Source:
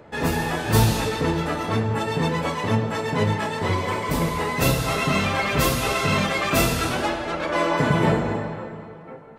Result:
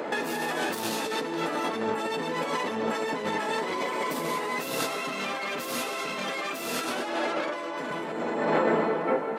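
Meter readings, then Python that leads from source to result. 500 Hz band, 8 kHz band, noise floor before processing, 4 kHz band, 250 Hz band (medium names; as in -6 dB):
-3.5 dB, -7.0 dB, -41 dBFS, -6.0 dB, -7.5 dB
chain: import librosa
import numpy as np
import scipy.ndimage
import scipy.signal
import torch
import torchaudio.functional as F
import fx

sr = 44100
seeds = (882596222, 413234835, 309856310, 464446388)

y = 10.0 ** (-15.5 / 20.0) * np.tanh(x / 10.0 ** (-15.5 / 20.0))
y = scipy.signal.sosfilt(scipy.signal.butter(4, 240.0, 'highpass', fs=sr, output='sos'), y)
y = fx.over_compress(y, sr, threshold_db=-36.0, ratio=-1.0)
y = y * 10.0 ** (6.0 / 20.0)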